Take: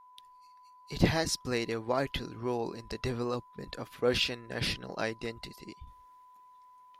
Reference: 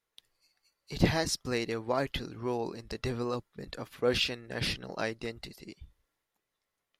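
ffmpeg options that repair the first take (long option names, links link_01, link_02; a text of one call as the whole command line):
ffmpeg -i in.wav -af "bandreject=frequency=1000:width=30,asetnsamples=nb_out_samples=441:pad=0,asendcmd='5.87 volume volume -7dB',volume=0dB" out.wav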